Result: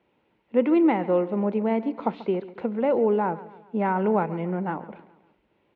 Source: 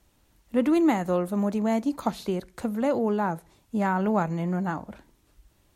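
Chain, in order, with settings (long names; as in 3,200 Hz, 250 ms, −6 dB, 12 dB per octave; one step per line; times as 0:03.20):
loudspeaker in its box 250–2,500 Hz, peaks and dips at 280 Hz −5 dB, 450 Hz +3 dB, 670 Hz −6 dB, 1,200 Hz −8 dB, 1,700 Hz −8 dB
repeating echo 138 ms, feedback 47%, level −17 dB
level +5 dB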